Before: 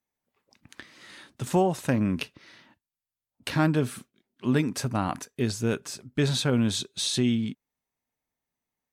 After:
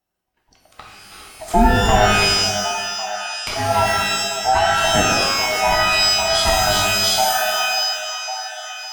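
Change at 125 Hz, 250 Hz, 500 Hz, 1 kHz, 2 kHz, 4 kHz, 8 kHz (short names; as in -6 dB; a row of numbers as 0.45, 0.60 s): +2.0, 0.0, +10.0, +18.0, +18.0, +16.5, +14.5 dB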